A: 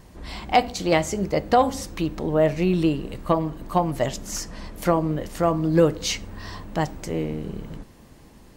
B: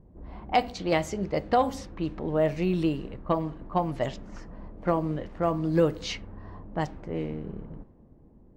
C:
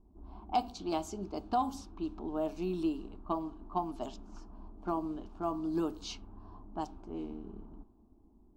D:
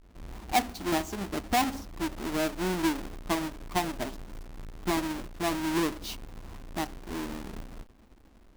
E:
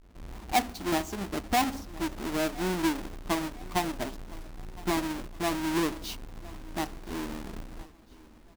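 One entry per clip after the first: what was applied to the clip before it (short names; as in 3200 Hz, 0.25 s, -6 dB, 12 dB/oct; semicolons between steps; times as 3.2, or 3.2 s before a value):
low-pass opened by the level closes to 460 Hz, open at -17.5 dBFS; dynamic EQ 8400 Hz, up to -5 dB, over -48 dBFS, Q 1; gain -5 dB
fixed phaser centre 520 Hz, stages 6; gain -5 dB
half-waves squared off; gain +1.5 dB
feedback echo 1.013 s, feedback 43%, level -21 dB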